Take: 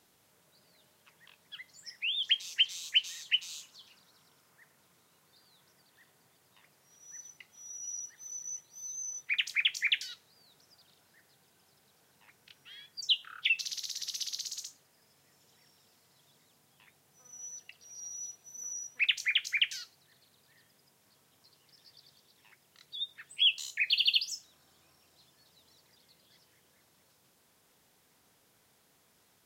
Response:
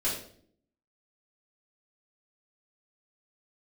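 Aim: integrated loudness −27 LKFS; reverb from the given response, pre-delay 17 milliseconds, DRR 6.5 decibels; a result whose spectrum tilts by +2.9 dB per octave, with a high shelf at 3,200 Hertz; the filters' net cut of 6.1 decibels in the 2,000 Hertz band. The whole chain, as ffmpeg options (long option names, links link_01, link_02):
-filter_complex "[0:a]equalizer=frequency=2000:width_type=o:gain=-5,highshelf=frequency=3200:gain=-6.5,asplit=2[link_01][link_02];[1:a]atrim=start_sample=2205,adelay=17[link_03];[link_02][link_03]afir=irnorm=-1:irlink=0,volume=-14dB[link_04];[link_01][link_04]amix=inputs=2:normalize=0,volume=8.5dB"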